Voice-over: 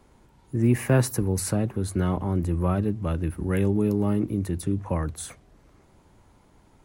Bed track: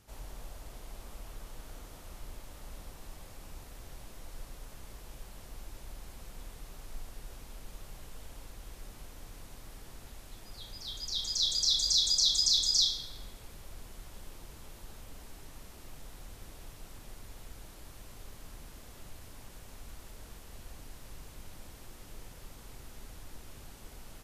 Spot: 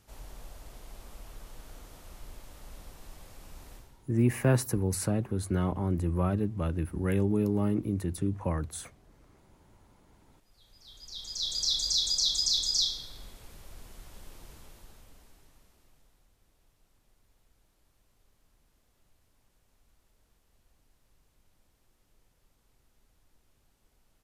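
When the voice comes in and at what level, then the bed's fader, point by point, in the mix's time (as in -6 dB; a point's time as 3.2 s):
3.55 s, -4.0 dB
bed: 3.75 s -1 dB
4.09 s -23 dB
10.12 s -23 dB
11.61 s -1 dB
14.52 s -1 dB
16.33 s -20 dB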